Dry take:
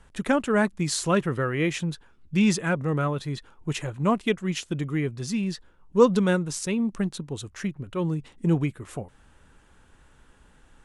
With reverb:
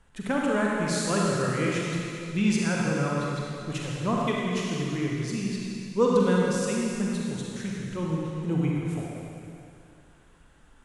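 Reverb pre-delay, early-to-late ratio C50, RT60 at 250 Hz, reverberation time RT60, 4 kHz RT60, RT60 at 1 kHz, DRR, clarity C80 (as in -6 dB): 36 ms, -2.5 dB, 2.6 s, 2.7 s, 2.7 s, 2.7 s, -3.5 dB, -1.0 dB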